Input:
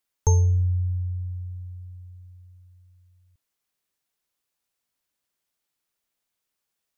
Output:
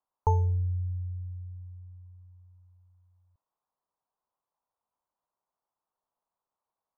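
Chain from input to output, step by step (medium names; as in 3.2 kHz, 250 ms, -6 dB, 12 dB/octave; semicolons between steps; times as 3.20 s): FFT filter 330 Hz 0 dB, 1 kHz +14 dB, 2.4 kHz -22 dB; trim -6.5 dB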